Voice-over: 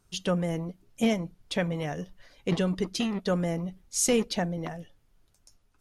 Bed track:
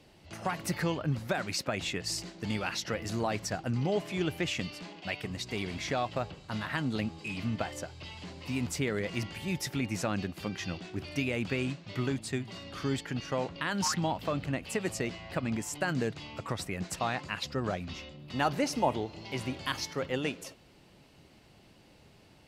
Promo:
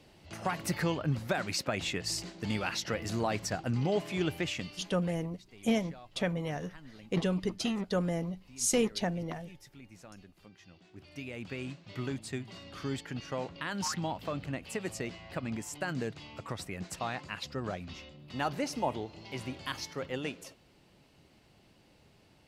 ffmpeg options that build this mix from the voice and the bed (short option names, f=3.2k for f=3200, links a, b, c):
-filter_complex "[0:a]adelay=4650,volume=-3.5dB[a];[1:a]volume=16dB,afade=t=out:st=4.27:d=0.9:silence=0.1,afade=t=in:st=10.72:d=1.44:silence=0.158489[b];[a][b]amix=inputs=2:normalize=0"